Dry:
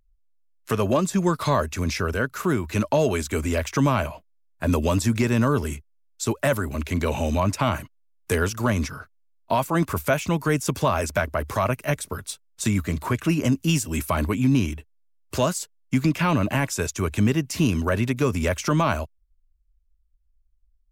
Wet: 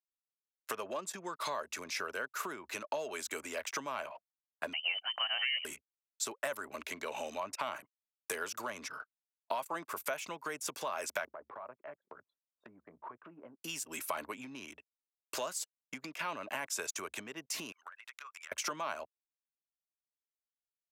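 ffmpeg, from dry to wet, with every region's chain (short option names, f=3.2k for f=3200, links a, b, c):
-filter_complex "[0:a]asettb=1/sr,asplit=3[a][b][c];[a]atrim=end=4.734[d];[b]atrim=start=4.73:end=5.65,asetpts=PTS-STARTPTS,afade=t=in:d=0.004:c=qsin,afade=t=out:st=0.916:d=0.004:c=qsin,highpass=f=320:w=0.5412,highpass=f=320:w=1.3066,lowpass=f=2.8k:t=q:w=0.5098,lowpass=f=2.8k:t=q:w=0.6013,lowpass=f=2.8k:t=q:w=0.9,lowpass=f=2.8k:t=q:w=2.563,afreqshift=-3300[e];[c]atrim=start=5.646[f];[d][e]acrossfade=d=0.004:c1=hsin:c2=qsin[g];[g][f]acrossfade=d=0.004:c1=qsin:c2=hsin,asettb=1/sr,asplit=3[h][i][j];[h]atrim=end=11.294[k];[i]atrim=start=11.29:end=13.6,asetpts=PTS-STARTPTS,afade=t=in:d=0.004:c=qsin,afade=t=out:st=2.306:d=0.004:c=qsin,lowpass=1.3k,acompressor=threshold=-37dB:ratio=4:attack=3.2:release=140:knee=1:detection=peak,asplit=2[l][m];[m]adelay=17,volume=-13.5dB[n];[l][n]amix=inputs=2:normalize=0,atrim=end_sample=101871[o];[j]atrim=start=13.596[p];[k][o]acrossfade=d=0.004:c1=hsin:c2=qsin[q];[q][p]acrossfade=d=0.004:c1=qsin:c2=hsin,asettb=1/sr,asplit=3[r][s][t];[r]atrim=end=17.724[u];[s]atrim=start=17.72:end=18.52,asetpts=PTS-STARTPTS,afade=t=in:d=0.004:c=qsin,afade=t=out:st=0.796:d=0.004:c=qsin,highpass=f=1.3k:t=q:w=2,acompressor=threshold=-38dB:ratio=20:attack=3.2:release=140:knee=1:detection=peak[v];[t]atrim=start=18.516[w];[u][v]acrossfade=d=0.004:c1=hsin:c2=qsin[x];[x][w]acrossfade=d=0.004:c1=qsin:c2=hsin,acompressor=threshold=-25dB:ratio=12,anlmdn=0.251,highpass=580,volume=-4.5dB"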